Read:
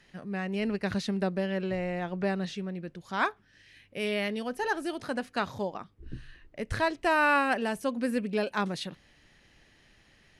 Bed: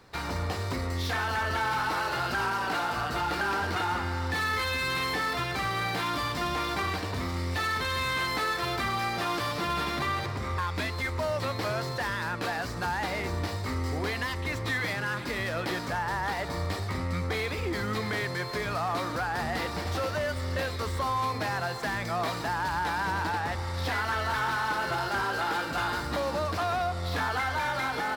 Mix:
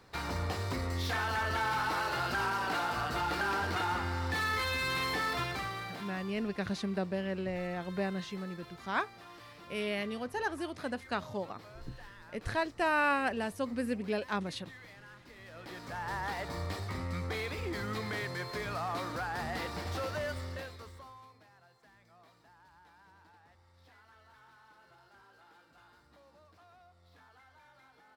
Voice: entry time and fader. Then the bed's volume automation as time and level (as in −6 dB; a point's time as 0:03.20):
5.75 s, −4.5 dB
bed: 0:05.43 −3.5 dB
0:06.43 −22 dB
0:15.36 −22 dB
0:16.12 −6 dB
0:20.35 −6 dB
0:21.47 −31.5 dB